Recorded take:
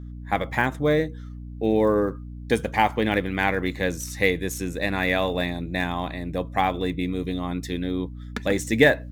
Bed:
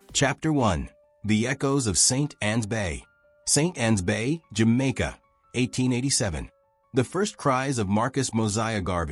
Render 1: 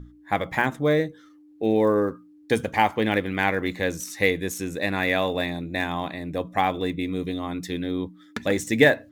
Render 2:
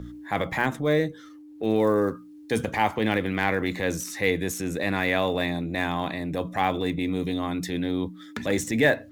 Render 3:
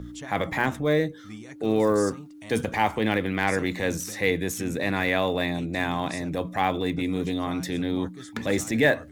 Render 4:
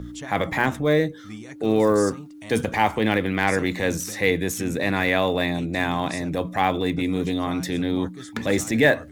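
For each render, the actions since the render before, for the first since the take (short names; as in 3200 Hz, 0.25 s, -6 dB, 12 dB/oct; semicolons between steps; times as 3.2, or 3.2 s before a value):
notches 60/120/180/240 Hz
transient shaper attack -7 dB, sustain +3 dB; three-band squash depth 40%
add bed -19 dB
gain +3 dB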